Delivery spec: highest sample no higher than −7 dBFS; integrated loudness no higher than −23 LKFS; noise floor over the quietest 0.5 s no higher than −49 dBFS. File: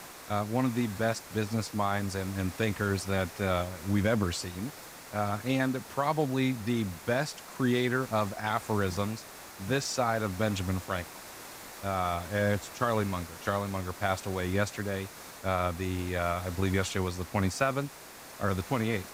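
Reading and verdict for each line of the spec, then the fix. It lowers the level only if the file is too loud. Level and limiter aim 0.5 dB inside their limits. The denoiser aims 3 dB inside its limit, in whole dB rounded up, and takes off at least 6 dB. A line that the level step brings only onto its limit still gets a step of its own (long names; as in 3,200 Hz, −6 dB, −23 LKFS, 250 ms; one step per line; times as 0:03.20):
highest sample −12.5 dBFS: in spec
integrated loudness −31.0 LKFS: in spec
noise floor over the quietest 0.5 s −48 dBFS: out of spec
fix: broadband denoise 6 dB, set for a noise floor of −48 dBFS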